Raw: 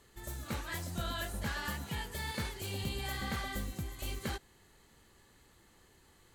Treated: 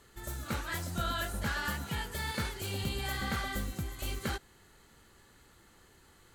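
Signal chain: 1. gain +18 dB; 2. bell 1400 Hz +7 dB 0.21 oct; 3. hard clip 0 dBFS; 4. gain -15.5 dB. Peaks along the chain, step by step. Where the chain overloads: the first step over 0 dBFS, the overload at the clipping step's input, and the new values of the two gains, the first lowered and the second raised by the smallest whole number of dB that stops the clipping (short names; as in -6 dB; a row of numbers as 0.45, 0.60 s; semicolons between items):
-5.5, -5.0, -5.0, -20.5 dBFS; no overload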